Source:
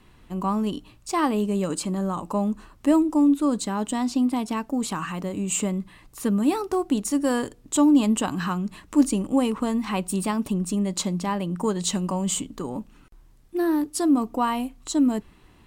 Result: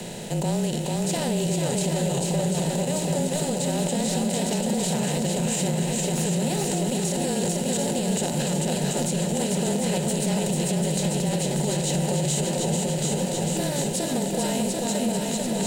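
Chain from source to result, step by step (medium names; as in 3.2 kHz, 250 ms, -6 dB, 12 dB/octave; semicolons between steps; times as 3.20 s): spectral levelling over time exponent 0.4; static phaser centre 310 Hz, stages 6; shuffle delay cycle 738 ms, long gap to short 1.5:1, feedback 61%, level -3 dB; peak limiter -13 dBFS, peak gain reduction 9.5 dB; frequency shift -29 Hz; trim -2.5 dB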